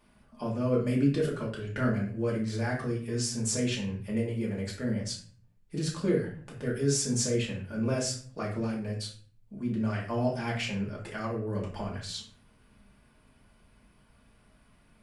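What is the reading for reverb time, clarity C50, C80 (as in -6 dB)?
0.45 s, 6.0 dB, 10.5 dB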